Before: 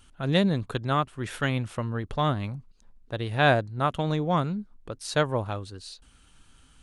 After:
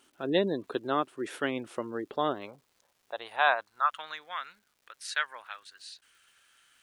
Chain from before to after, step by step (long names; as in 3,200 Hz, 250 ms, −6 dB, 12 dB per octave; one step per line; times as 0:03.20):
high-pass filter sweep 340 Hz → 1,700 Hz, 0:02.15–0:04.25
gate on every frequency bin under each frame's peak −30 dB strong
surface crackle 500 per second −53 dBFS
level −4.5 dB